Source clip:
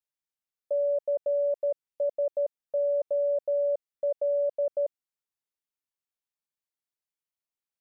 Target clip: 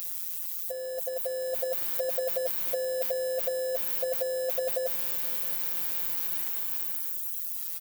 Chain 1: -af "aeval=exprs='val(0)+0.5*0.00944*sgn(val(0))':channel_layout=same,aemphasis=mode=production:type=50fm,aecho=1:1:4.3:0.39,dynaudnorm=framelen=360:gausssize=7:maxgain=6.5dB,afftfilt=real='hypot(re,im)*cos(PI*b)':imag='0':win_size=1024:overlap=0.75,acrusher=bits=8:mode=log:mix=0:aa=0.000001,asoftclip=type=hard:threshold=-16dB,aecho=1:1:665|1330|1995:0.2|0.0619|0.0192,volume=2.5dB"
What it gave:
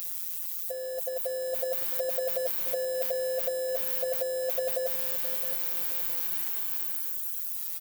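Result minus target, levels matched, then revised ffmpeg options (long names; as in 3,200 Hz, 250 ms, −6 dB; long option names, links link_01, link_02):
echo-to-direct +10 dB
-af "aeval=exprs='val(0)+0.5*0.00944*sgn(val(0))':channel_layout=same,aemphasis=mode=production:type=50fm,aecho=1:1:4.3:0.39,dynaudnorm=framelen=360:gausssize=7:maxgain=6.5dB,afftfilt=real='hypot(re,im)*cos(PI*b)':imag='0':win_size=1024:overlap=0.75,acrusher=bits=8:mode=log:mix=0:aa=0.000001,asoftclip=type=hard:threshold=-16dB,aecho=1:1:665|1330:0.0631|0.0196,volume=2.5dB"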